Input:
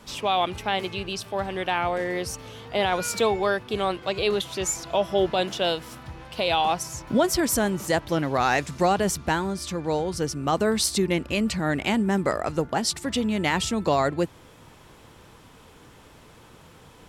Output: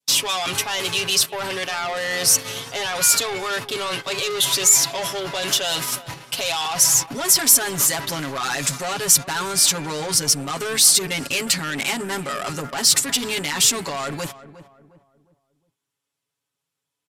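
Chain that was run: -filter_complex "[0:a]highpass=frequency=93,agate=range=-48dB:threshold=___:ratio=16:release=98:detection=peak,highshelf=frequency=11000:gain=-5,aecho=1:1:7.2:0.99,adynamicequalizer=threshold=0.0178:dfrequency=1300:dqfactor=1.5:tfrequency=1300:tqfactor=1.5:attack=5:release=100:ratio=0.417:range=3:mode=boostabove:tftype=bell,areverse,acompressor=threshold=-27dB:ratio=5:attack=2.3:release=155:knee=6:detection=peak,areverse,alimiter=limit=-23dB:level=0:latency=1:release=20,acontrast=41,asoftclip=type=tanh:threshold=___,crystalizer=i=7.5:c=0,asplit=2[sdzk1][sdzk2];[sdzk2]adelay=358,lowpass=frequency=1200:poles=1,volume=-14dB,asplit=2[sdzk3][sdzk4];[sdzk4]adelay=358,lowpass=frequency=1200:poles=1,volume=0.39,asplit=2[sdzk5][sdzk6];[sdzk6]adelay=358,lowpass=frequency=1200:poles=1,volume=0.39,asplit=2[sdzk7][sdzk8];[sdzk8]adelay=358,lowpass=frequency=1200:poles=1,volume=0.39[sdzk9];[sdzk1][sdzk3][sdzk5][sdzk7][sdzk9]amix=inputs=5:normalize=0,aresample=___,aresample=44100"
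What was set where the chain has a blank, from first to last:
-42dB, -25dB, 32000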